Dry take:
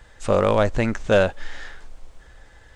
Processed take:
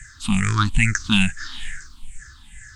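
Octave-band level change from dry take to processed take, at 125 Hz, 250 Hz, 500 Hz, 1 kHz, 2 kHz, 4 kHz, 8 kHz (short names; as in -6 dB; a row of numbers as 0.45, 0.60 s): +5.0, +4.0, -27.5, -2.5, +5.0, +10.0, +12.5 dB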